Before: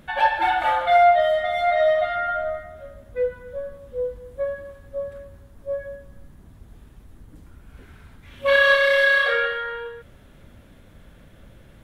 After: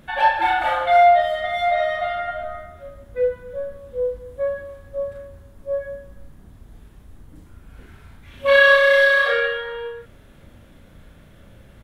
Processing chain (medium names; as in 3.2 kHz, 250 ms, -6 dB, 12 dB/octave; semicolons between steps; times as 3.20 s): doubling 36 ms -4 dB